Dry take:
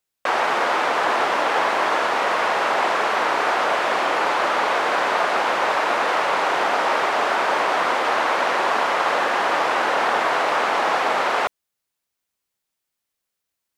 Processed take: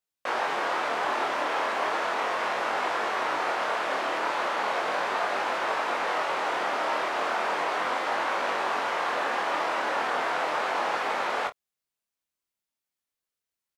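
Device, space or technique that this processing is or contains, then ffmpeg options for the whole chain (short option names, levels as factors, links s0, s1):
double-tracked vocal: -filter_complex "[0:a]asplit=2[s0][s1];[s1]adelay=29,volume=0.251[s2];[s0][s2]amix=inputs=2:normalize=0,flanger=delay=20:depth=6:speed=0.36,volume=0.562"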